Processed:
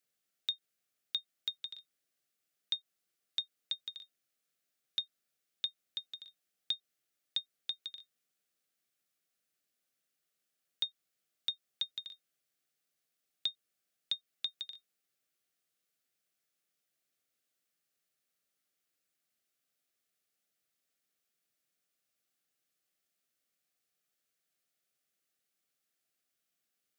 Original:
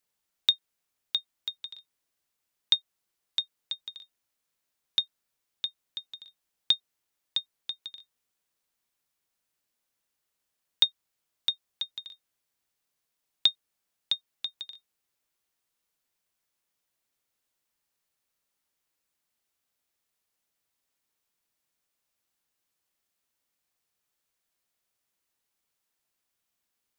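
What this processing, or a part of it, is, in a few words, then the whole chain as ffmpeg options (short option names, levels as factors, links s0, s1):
PA system with an anti-feedback notch: -af "highpass=f=110:w=0.5412,highpass=f=110:w=1.3066,asuperstop=centerf=950:order=4:qfactor=2.8,alimiter=limit=0.106:level=0:latency=1:release=147,volume=0.75"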